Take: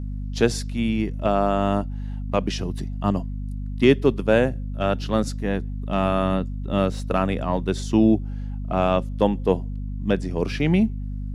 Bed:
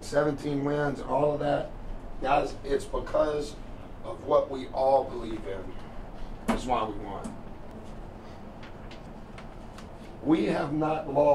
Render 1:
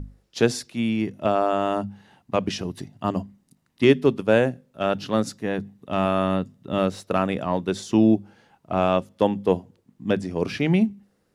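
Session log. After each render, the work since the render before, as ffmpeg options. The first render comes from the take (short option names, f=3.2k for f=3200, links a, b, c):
-af "bandreject=f=50:t=h:w=6,bandreject=f=100:t=h:w=6,bandreject=f=150:t=h:w=6,bandreject=f=200:t=h:w=6,bandreject=f=250:t=h:w=6"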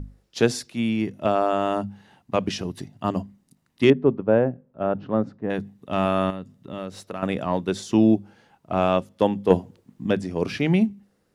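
-filter_complex "[0:a]asettb=1/sr,asplit=3[a][b][c];[a]atrim=end=3.904[d];[b]atrim=start=3.9:end=5.5,asetpts=PTS-STARTPTS,afade=t=in:d=0.004:c=qsin,afade=t=out:st=1.596:d=0.004:c=qsin,lowpass=1.1k[e];[c]atrim=start=5.496[f];[d][e]acrossfade=d=0.004:c1=hsin:c2=qsin[g];[g][f]acrossfade=d=0.004:c1=qsin:c2=hsin,asettb=1/sr,asplit=3[h][i][j];[h]atrim=end=6.304[k];[i]atrim=start=6.3:end=7.23,asetpts=PTS-STARTPTS,afade=t=in:d=0.004:c=qsin,afade=t=out:st=0.926:d=0.004:c=qsin,acompressor=threshold=-36dB:ratio=2:attack=3.2:release=140:knee=1:detection=peak[l];[j]atrim=start=7.226[m];[k][l]acrossfade=d=0.004:c1=hsin:c2=qsin[n];[n][m]acrossfade=d=0.004:c1=qsin:c2=hsin,asettb=1/sr,asplit=3[o][p][q];[o]atrim=end=9.504[r];[p]atrim=start=9.5:end=10.07,asetpts=PTS-STARTPTS,afade=t=in:d=0.004:c=qsin,afade=t=out:st=0.566:d=0.004:c=qsin,acontrast=35[s];[q]atrim=start=10.066[t];[r][s]acrossfade=d=0.004:c1=hsin:c2=qsin[u];[u][t]acrossfade=d=0.004:c1=qsin:c2=hsin"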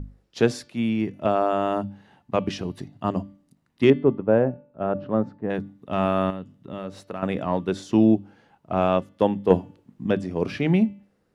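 -af "highshelf=f=3.9k:g=-8.5,bandreject=f=292:t=h:w=4,bandreject=f=584:t=h:w=4,bandreject=f=876:t=h:w=4,bandreject=f=1.168k:t=h:w=4,bandreject=f=1.46k:t=h:w=4,bandreject=f=1.752k:t=h:w=4,bandreject=f=2.044k:t=h:w=4,bandreject=f=2.336k:t=h:w=4,bandreject=f=2.628k:t=h:w=4,bandreject=f=2.92k:t=h:w=4,bandreject=f=3.212k:t=h:w=4,bandreject=f=3.504k:t=h:w=4,bandreject=f=3.796k:t=h:w=4,bandreject=f=4.088k:t=h:w=4,bandreject=f=4.38k:t=h:w=4,bandreject=f=4.672k:t=h:w=4"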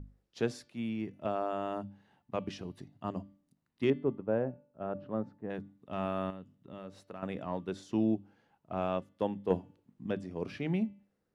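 -af "volume=-12dB"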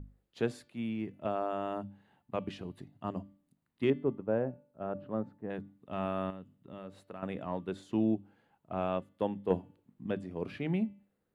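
-af "equalizer=f=5.6k:t=o:w=0.45:g=-10.5"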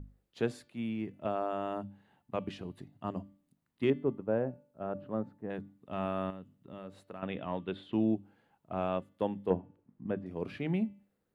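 -filter_complex "[0:a]asettb=1/sr,asplit=3[a][b][c];[a]atrim=end=7.214[d];[b]atrim=start=7.21:end=7.93,asetpts=PTS-STARTPTS,afade=t=in:d=0.004:c=qsin,afade=t=out:st=0.716:d=0.004:c=qsin,highshelf=f=4.6k:t=q:w=3:g=-12[e];[c]atrim=start=7.926[f];[d][e]acrossfade=d=0.004:c1=hsin:c2=qsin[g];[g][f]acrossfade=d=0.004:c1=qsin:c2=hsin,asettb=1/sr,asplit=3[h][i][j];[h]atrim=end=9.504[k];[i]atrim=start=9.5:end=10.26,asetpts=PTS-STARTPTS,afade=t=in:d=0.004:c=qsin,afade=t=out:st=0.756:d=0.004:c=qsin,lowpass=1.8k[l];[j]atrim=start=10.256[m];[k][l]acrossfade=d=0.004:c1=hsin:c2=qsin[n];[n][m]acrossfade=d=0.004:c1=qsin:c2=hsin"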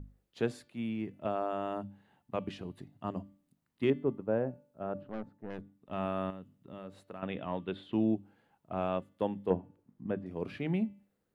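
-filter_complex "[0:a]asettb=1/sr,asplit=3[a][b][c];[a]atrim=end=5.034[d];[b]atrim=start=5.03:end=5.91,asetpts=PTS-STARTPTS,afade=t=in:d=0.004:c=qsin,afade=t=out:st=0.876:d=0.004:c=qsin,aeval=exprs='(tanh(50.1*val(0)+0.7)-tanh(0.7))/50.1':c=same[e];[c]atrim=start=5.906[f];[d][e]acrossfade=d=0.004:c1=hsin:c2=qsin[g];[g][f]acrossfade=d=0.004:c1=qsin:c2=hsin"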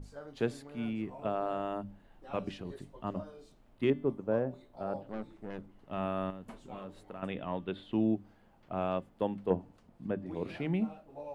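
-filter_complex "[1:a]volume=-22dB[a];[0:a][a]amix=inputs=2:normalize=0"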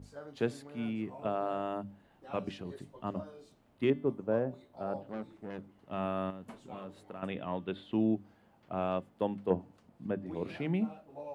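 -af "highpass=74"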